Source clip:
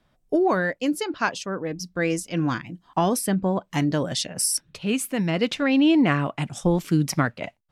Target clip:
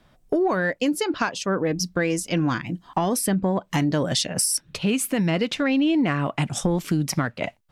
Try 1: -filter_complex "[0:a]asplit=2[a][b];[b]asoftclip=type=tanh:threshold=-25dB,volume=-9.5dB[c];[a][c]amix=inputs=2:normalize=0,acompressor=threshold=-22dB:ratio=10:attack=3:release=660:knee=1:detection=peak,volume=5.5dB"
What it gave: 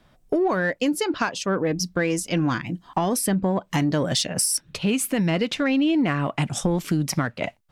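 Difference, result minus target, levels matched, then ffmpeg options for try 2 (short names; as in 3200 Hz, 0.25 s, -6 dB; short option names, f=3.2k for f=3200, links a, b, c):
soft clip: distortion +7 dB
-filter_complex "[0:a]asplit=2[a][b];[b]asoftclip=type=tanh:threshold=-17dB,volume=-9.5dB[c];[a][c]amix=inputs=2:normalize=0,acompressor=threshold=-22dB:ratio=10:attack=3:release=660:knee=1:detection=peak,volume=5.5dB"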